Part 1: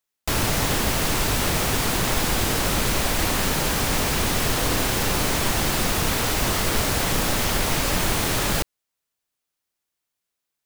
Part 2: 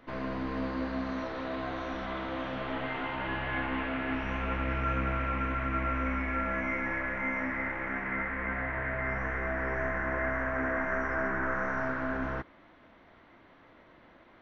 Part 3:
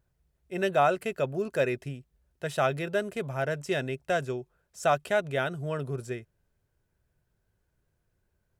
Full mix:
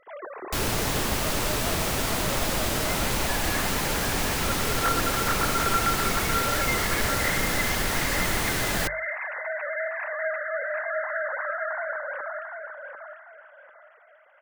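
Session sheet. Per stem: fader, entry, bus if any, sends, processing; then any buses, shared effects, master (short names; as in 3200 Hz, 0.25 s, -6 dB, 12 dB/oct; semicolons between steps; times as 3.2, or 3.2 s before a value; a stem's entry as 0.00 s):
-4.0 dB, 0.25 s, no send, no echo send, notches 50/100/150 Hz
0.0 dB, 0.00 s, no send, echo send -6 dB, sine-wave speech
off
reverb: off
echo: feedback echo 0.744 s, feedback 29%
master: dry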